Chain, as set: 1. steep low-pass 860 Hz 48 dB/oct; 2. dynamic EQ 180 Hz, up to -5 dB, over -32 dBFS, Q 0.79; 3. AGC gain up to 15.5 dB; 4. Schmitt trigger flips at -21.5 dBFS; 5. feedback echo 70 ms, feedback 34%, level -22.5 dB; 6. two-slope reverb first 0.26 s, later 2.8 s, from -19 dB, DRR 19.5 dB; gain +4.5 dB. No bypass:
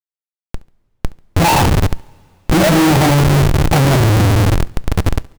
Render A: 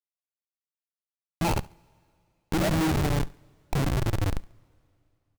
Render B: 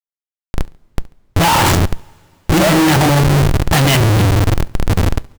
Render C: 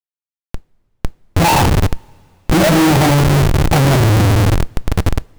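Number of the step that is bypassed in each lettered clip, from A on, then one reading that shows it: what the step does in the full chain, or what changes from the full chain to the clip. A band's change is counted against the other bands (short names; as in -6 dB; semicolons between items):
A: 3, momentary loudness spread change -10 LU; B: 1, 4 kHz band +2.5 dB; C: 5, echo-to-direct -17.5 dB to -19.5 dB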